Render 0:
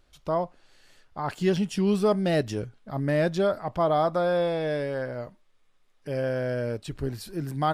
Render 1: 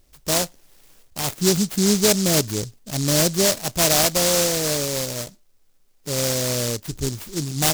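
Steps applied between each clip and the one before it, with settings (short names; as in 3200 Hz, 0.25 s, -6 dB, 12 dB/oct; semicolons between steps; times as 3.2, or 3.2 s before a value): noise-modulated delay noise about 5700 Hz, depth 0.27 ms; gain +5 dB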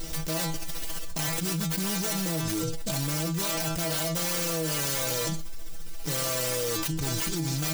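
self-modulated delay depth 0.29 ms; metallic resonator 160 Hz, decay 0.21 s, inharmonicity 0.002; fast leveller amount 100%; gain -5 dB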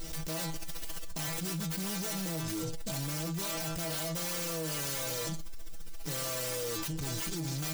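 soft clip -26.5 dBFS, distortion -15 dB; gain -3.5 dB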